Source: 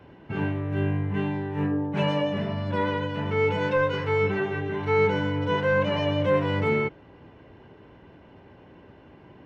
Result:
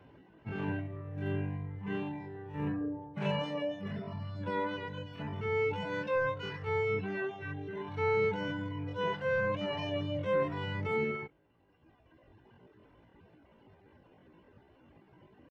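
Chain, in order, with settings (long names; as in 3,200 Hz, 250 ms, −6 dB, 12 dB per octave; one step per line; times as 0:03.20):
reverb reduction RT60 1.2 s
tempo change 0.61×
level −7 dB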